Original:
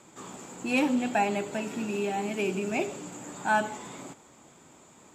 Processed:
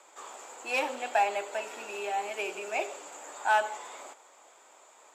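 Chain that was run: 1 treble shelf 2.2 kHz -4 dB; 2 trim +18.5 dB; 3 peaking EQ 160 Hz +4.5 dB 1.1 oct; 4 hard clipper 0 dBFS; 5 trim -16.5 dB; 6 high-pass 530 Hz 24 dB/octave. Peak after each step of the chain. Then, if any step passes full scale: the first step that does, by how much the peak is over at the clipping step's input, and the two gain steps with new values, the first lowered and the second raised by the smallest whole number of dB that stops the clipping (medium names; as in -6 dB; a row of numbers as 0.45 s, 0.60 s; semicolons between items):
-13.5 dBFS, +5.0 dBFS, +5.5 dBFS, 0.0 dBFS, -16.5 dBFS, -14.0 dBFS; step 2, 5.5 dB; step 2 +12.5 dB, step 5 -10.5 dB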